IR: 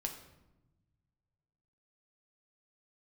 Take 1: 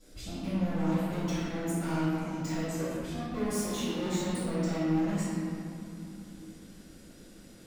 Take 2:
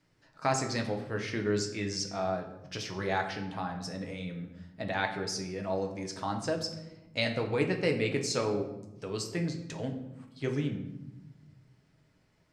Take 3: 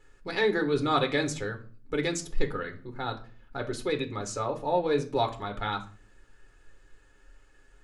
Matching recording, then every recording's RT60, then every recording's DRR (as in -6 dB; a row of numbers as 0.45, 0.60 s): 2; 2.7, 1.0, 0.40 s; -20.0, 2.5, 3.5 dB